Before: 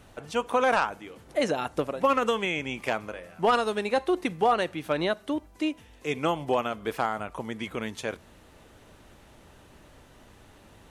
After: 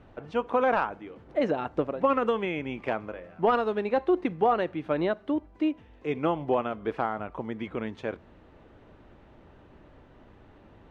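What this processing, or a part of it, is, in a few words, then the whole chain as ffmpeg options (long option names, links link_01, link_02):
phone in a pocket: -af "lowpass=3300,equalizer=frequency=330:width_type=o:width=0.77:gain=2.5,highshelf=frequency=2100:gain=-9"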